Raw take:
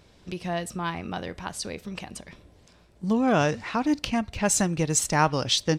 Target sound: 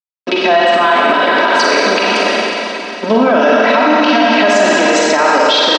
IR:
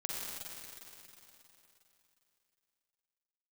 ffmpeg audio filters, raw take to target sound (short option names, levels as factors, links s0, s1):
-filter_complex "[0:a]aeval=exprs='sgn(val(0))*max(abs(val(0))-0.00668,0)':c=same,acompressor=threshold=0.0126:ratio=3,highpass=f=260:w=0.5412,highpass=f=260:w=1.3066,equalizer=f=340:t=q:w=4:g=-9,equalizer=f=490:t=q:w=4:g=9,equalizer=f=1500:t=q:w=4:g=4,lowpass=f=4500:w=0.5412,lowpass=f=4500:w=1.3066,aecho=1:1:3.1:0.84[s0];[1:a]atrim=start_sample=2205[s1];[s0][s1]afir=irnorm=-1:irlink=0,alimiter=level_in=39.8:limit=0.891:release=50:level=0:latency=1,volume=0.891"